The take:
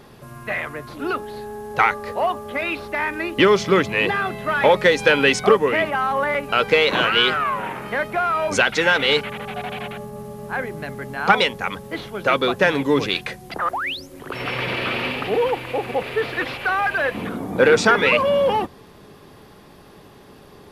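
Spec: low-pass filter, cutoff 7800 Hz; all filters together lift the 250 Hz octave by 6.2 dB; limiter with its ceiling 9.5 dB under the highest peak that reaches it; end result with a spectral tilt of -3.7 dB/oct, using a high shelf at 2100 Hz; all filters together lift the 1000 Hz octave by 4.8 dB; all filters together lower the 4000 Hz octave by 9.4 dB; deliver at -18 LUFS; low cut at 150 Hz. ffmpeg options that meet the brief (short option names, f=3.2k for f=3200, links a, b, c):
-af "highpass=150,lowpass=7.8k,equalizer=f=250:t=o:g=8.5,equalizer=f=1k:t=o:g=8,highshelf=f=2.1k:g=-6.5,equalizer=f=4k:t=o:g=-8,volume=1.5dB,alimiter=limit=-6dB:level=0:latency=1"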